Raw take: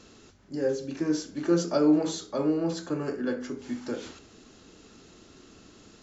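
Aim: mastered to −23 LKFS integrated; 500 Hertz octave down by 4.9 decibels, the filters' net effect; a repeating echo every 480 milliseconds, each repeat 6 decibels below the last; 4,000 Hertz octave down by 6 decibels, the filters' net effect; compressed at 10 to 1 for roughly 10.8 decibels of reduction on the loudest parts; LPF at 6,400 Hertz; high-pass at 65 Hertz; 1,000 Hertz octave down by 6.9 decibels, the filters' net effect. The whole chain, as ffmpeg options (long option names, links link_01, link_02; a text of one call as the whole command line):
ffmpeg -i in.wav -af "highpass=65,lowpass=6400,equalizer=frequency=500:width_type=o:gain=-4.5,equalizer=frequency=1000:width_type=o:gain=-8,equalizer=frequency=4000:width_type=o:gain=-6,acompressor=threshold=-30dB:ratio=10,aecho=1:1:480|960|1440|1920|2400|2880:0.501|0.251|0.125|0.0626|0.0313|0.0157,volume=13dB" out.wav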